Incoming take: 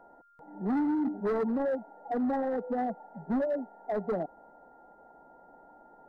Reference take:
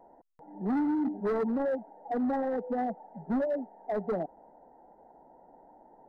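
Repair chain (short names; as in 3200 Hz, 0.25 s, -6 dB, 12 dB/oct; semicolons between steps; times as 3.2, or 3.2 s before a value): notch 1400 Hz, Q 30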